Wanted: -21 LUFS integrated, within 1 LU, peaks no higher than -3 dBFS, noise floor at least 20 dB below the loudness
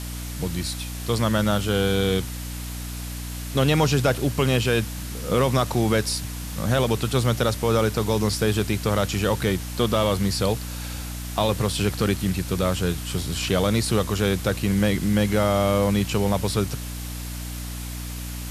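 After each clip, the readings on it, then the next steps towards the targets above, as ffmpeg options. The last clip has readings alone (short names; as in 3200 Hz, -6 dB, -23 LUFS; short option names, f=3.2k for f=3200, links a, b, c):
hum 60 Hz; harmonics up to 300 Hz; hum level -30 dBFS; noise floor -32 dBFS; noise floor target -44 dBFS; loudness -24.0 LUFS; peak -8.0 dBFS; loudness target -21.0 LUFS
-> -af "bandreject=f=60:t=h:w=6,bandreject=f=120:t=h:w=6,bandreject=f=180:t=h:w=6,bandreject=f=240:t=h:w=6,bandreject=f=300:t=h:w=6"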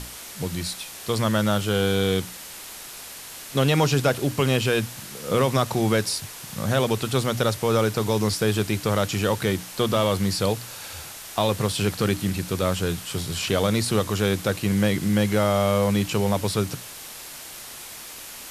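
hum none; noise floor -40 dBFS; noise floor target -44 dBFS
-> -af "afftdn=nr=6:nf=-40"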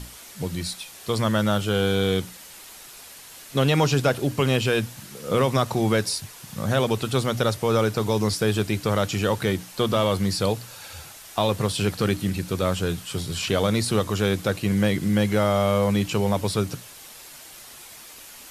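noise floor -44 dBFS; loudness -24.0 LUFS; peak -8.0 dBFS; loudness target -21.0 LUFS
-> -af "volume=3dB"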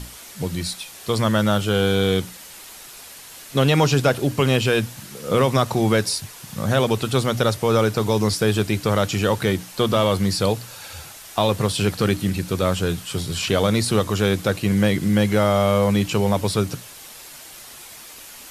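loudness -21.0 LUFS; peak -5.0 dBFS; noise floor -41 dBFS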